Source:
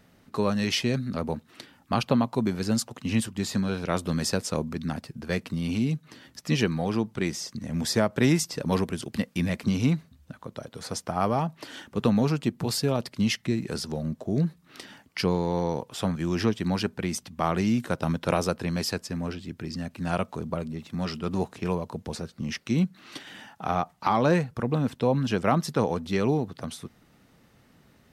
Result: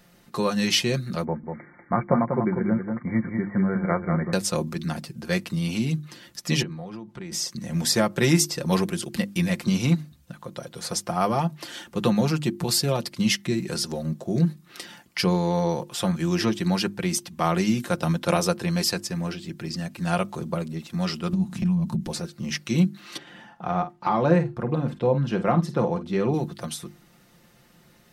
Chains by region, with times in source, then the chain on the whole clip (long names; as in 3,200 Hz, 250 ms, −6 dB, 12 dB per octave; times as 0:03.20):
0:01.24–0:04.33: linear-phase brick-wall low-pass 2,300 Hz + single-tap delay 193 ms −5.5 dB
0:06.62–0:07.32: low-pass filter 1,800 Hz 6 dB per octave + downward compressor 12 to 1, threshold −34 dBFS
0:21.33–0:22.07: low shelf with overshoot 300 Hz +12.5 dB, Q 3 + downward compressor 16 to 1, threshold −23 dBFS
0:23.17–0:26.34: low-pass filter 1,100 Hz 6 dB per octave + double-tracking delay 49 ms −11.5 dB
whole clip: high-shelf EQ 4,100 Hz +6.5 dB; mains-hum notches 50/100/150/200/250/300/350 Hz; comb filter 5.7 ms, depth 58%; level +1 dB